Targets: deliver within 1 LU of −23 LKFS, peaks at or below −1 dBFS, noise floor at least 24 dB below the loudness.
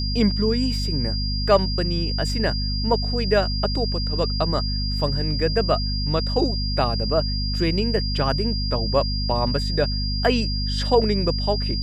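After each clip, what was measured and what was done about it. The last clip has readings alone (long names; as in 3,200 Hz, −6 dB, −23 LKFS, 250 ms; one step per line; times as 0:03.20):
mains hum 50 Hz; hum harmonics up to 250 Hz; level of the hum −23 dBFS; interfering tone 4,800 Hz; level of the tone −28 dBFS; integrated loudness −22.5 LKFS; sample peak −5.0 dBFS; target loudness −23.0 LKFS
→ hum removal 50 Hz, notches 5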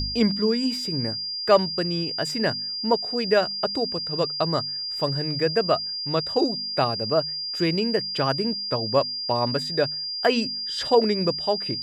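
mains hum none found; interfering tone 4,800 Hz; level of the tone −28 dBFS
→ notch filter 4,800 Hz, Q 30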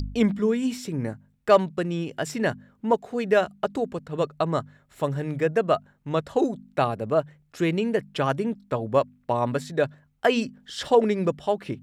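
interfering tone none found; integrated loudness −25.5 LKFS; sample peak −6.5 dBFS; target loudness −23.0 LKFS
→ level +2.5 dB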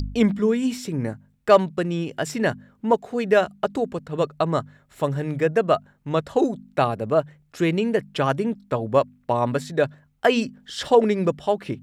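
integrated loudness −23.0 LKFS; sample peak −4.0 dBFS; background noise floor −61 dBFS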